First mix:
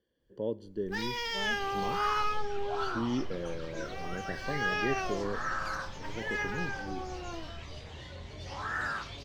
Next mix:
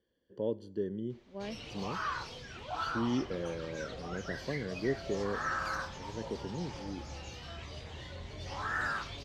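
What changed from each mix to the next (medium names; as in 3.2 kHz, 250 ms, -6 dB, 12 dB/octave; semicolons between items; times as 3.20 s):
first sound: muted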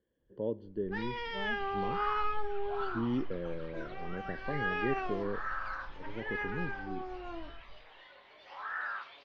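first sound: unmuted; second sound: add high-pass 870 Hz 12 dB/octave; master: add distance through air 380 m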